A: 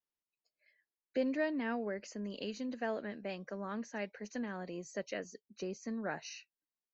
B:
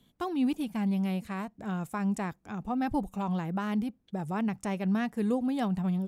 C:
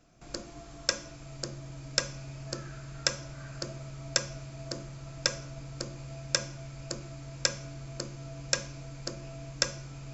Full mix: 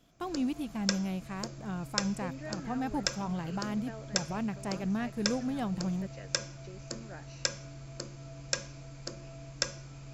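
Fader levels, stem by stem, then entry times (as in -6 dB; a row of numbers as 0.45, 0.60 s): -9.5, -4.0, -3.5 dB; 1.05, 0.00, 0.00 s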